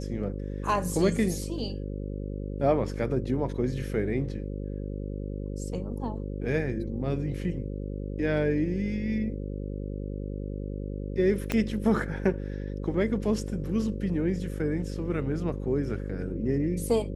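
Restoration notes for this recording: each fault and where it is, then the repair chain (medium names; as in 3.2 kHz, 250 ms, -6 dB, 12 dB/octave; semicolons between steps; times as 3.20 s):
buzz 50 Hz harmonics 11 -34 dBFS
11.52 s: pop -13 dBFS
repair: de-click; de-hum 50 Hz, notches 11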